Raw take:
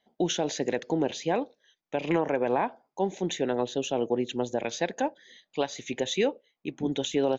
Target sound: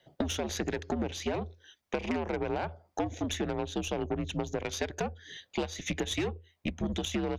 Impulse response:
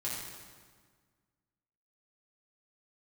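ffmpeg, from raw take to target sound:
-af "aeval=exprs='0.211*(cos(1*acos(clip(val(0)/0.211,-1,1)))-cos(1*PI/2))+0.0266*(cos(6*acos(clip(val(0)/0.211,-1,1)))-cos(6*PI/2))':c=same,afreqshift=-84,acompressor=threshold=0.0126:ratio=6,volume=2.51"

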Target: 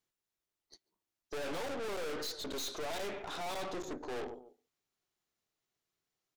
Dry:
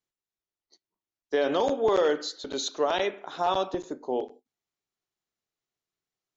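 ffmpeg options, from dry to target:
-filter_complex "[0:a]asplit=2[s0][s1];[s1]adelay=142,lowpass=f=1300:p=1,volume=0.0891,asplit=2[s2][s3];[s3]adelay=142,lowpass=f=1300:p=1,volume=0.31[s4];[s0][s2][s4]amix=inputs=3:normalize=0,aeval=exprs='(tanh(141*val(0)+0.6)-tanh(0.6))/141':c=same,volume=1.78"

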